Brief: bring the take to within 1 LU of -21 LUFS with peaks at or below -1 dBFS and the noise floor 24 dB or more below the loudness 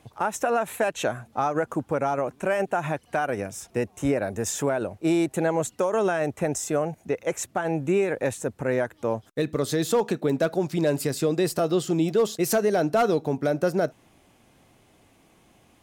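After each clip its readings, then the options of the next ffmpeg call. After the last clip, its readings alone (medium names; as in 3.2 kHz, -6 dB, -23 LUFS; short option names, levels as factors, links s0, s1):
loudness -26.0 LUFS; peak level -13.0 dBFS; loudness target -21.0 LUFS
-> -af "volume=1.78"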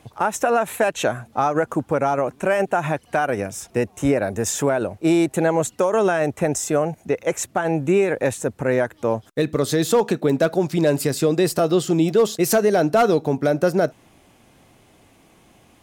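loudness -21.0 LUFS; peak level -8.0 dBFS; noise floor -55 dBFS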